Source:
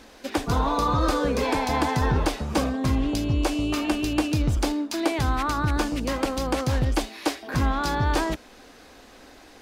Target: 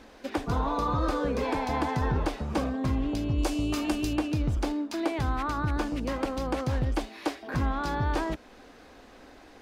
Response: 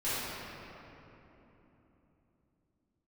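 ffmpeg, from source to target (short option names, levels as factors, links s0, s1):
-filter_complex "[0:a]asettb=1/sr,asplit=3[s0][s1][s2];[s0]atrim=end=3.384[s3];[s1]atrim=start=3.38:end=4.16,asetpts=PTS-STARTPTS,afade=t=in:d=0.004:c=qsin,afade=t=out:st=0.776:d=0.004:c=qsin,bass=f=250:g=3,treble=f=4000:g=10[s4];[s2]atrim=start=4.156[s5];[s3][s4]acrossfade=d=0.004:c1=hsin:c2=qsin[s6];[s6][s5]acrossfade=d=0.004:c1=qsin:c2=hsin,asplit=2[s7][s8];[s8]acompressor=threshold=0.0355:ratio=6,volume=0.794[s9];[s7][s9]amix=inputs=2:normalize=0,highshelf=f=3500:g=-9,volume=0.473"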